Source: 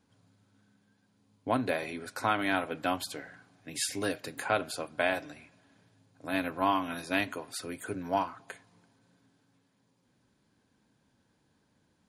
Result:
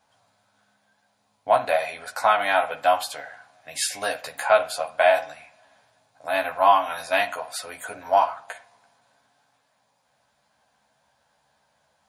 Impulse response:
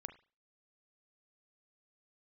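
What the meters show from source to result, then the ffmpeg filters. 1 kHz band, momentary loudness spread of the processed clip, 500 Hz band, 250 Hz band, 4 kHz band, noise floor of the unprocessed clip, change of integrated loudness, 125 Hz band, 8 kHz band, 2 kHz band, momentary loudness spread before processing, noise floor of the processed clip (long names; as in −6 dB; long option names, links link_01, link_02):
+11.5 dB, 19 LU, +11.5 dB, −9.5 dB, +7.0 dB, −72 dBFS, +9.5 dB, can't be measured, +6.5 dB, +7.5 dB, 16 LU, −69 dBFS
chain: -filter_complex "[0:a]lowshelf=frequency=480:width_type=q:width=3:gain=-11.5,asplit=2[link_01][link_02];[1:a]atrim=start_sample=2205,adelay=14[link_03];[link_02][link_03]afir=irnorm=-1:irlink=0,volume=1.5dB[link_04];[link_01][link_04]amix=inputs=2:normalize=0,volume=5dB"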